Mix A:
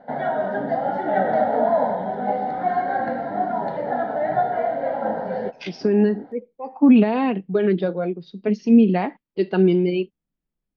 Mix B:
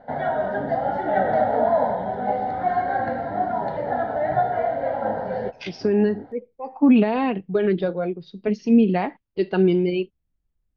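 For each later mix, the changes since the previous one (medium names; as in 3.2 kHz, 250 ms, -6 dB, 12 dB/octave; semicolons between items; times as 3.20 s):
master: add resonant low shelf 130 Hz +10.5 dB, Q 1.5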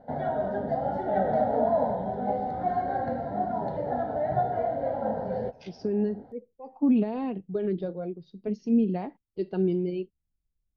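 first voice -10.0 dB; second voice -6.0 dB; master: add peaking EQ 2 kHz -12.5 dB 2.6 oct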